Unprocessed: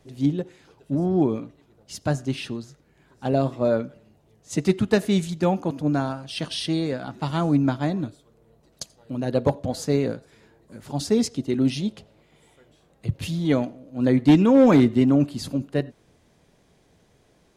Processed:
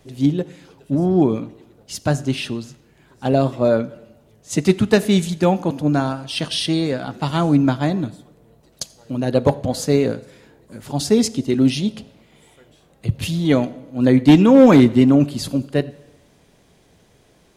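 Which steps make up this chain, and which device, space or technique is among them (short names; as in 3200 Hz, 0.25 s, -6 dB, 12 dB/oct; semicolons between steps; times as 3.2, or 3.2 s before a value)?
presence and air boost (bell 3000 Hz +2 dB; high shelf 9600 Hz +5.5 dB); plate-style reverb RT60 1.1 s, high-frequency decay 0.85×, DRR 18.5 dB; gain +5 dB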